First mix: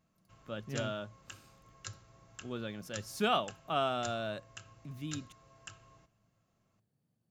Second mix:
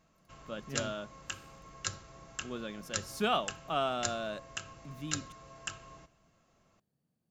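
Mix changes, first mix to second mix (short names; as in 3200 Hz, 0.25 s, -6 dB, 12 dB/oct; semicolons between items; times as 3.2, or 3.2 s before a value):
background +9.5 dB; master: add bell 110 Hz -13 dB 0.24 oct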